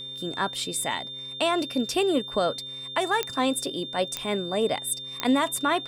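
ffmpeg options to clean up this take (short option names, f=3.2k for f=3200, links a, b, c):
-af "adeclick=t=4,bandreject=f=130.3:t=h:w=4,bandreject=f=260.6:t=h:w=4,bandreject=f=390.9:t=h:w=4,bandreject=f=521.2:t=h:w=4,bandreject=f=3.6k:w=30"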